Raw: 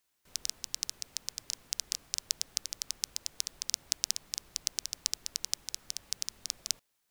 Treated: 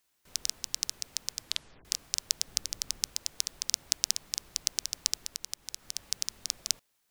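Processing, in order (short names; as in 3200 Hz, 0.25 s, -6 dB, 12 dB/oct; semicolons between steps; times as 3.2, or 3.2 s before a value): 1.4 tape stop 0.45 s; 2.47–3.07 low shelf 340 Hz +6.5 dB; 5.23–5.95 compressor 6:1, threshold -35 dBFS, peak gain reduction 10.5 dB; gain +3 dB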